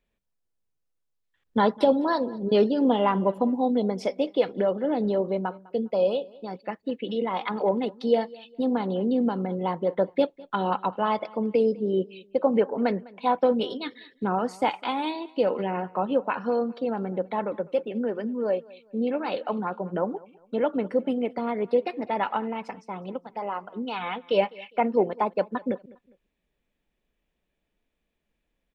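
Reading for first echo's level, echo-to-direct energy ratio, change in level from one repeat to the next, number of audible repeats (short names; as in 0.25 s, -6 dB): -22.5 dB, -22.0 dB, -9.5 dB, 2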